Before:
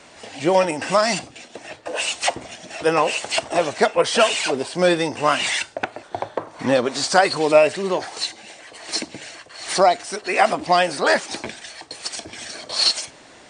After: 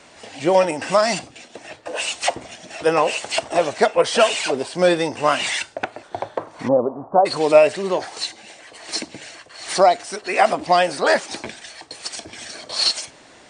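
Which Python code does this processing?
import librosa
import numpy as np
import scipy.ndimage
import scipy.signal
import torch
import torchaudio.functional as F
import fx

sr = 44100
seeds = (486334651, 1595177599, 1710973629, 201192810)

y = fx.steep_lowpass(x, sr, hz=1100.0, slope=48, at=(6.67, 7.25), fade=0.02)
y = fx.dynamic_eq(y, sr, hz=590.0, q=1.3, threshold_db=-25.0, ratio=4.0, max_db=3)
y = F.gain(torch.from_numpy(y), -1.0).numpy()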